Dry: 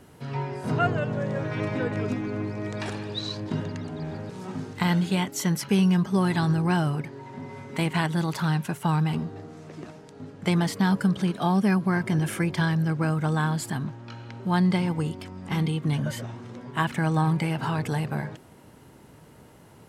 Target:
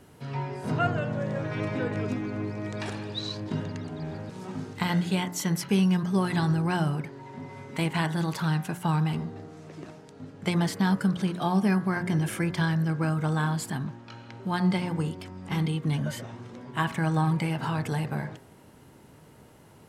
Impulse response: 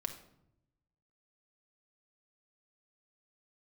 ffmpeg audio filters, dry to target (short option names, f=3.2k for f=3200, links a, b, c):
-af "bandreject=f=59.13:t=h:w=4,bandreject=f=118.26:t=h:w=4,bandreject=f=177.39:t=h:w=4,bandreject=f=236.52:t=h:w=4,bandreject=f=295.65:t=h:w=4,bandreject=f=354.78:t=h:w=4,bandreject=f=413.91:t=h:w=4,bandreject=f=473.04:t=h:w=4,bandreject=f=532.17:t=h:w=4,bandreject=f=591.3:t=h:w=4,bandreject=f=650.43:t=h:w=4,bandreject=f=709.56:t=h:w=4,bandreject=f=768.69:t=h:w=4,bandreject=f=827.82:t=h:w=4,bandreject=f=886.95:t=h:w=4,bandreject=f=946.08:t=h:w=4,bandreject=f=1.00521k:t=h:w=4,bandreject=f=1.06434k:t=h:w=4,bandreject=f=1.12347k:t=h:w=4,bandreject=f=1.1826k:t=h:w=4,bandreject=f=1.24173k:t=h:w=4,bandreject=f=1.30086k:t=h:w=4,bandreject=f=1.35999k:t=h:w=4,bandreject=f=1.41912k:t=h:w=4,bandreject=f=1.47825k:t=h:w=4,bandreject=f=1.53738k:t=h:w=4,bandreject=f=1.59651k:t=h:w=4,bandreject=f=1.65564k:t=h:w=4,bandreject=f=1.71477k:t=h:w=4,bandreject=f=1.7739k:t=h:w=4,bandreject=f=1.83303k:t=h:w=4,bandreject=f=1.89216k:t=h:w=4,bandreject=f=1.95129k:t=h:w=4,bandreject=f=2.01042k:t=h:w=4,bandreject=f=2.06955k:t=h:w=4,volume=-1.5dB"